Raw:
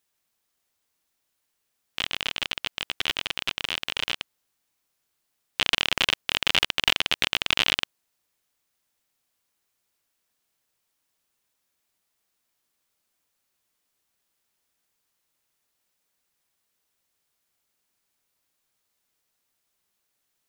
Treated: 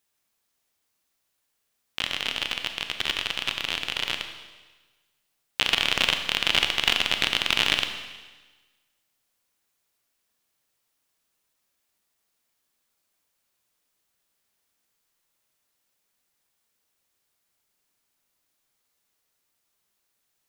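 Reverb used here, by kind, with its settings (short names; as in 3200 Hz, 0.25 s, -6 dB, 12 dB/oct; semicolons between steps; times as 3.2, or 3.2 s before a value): Schroeder reverb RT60 1.3 s, combs from 27 ms, DRR 6 dB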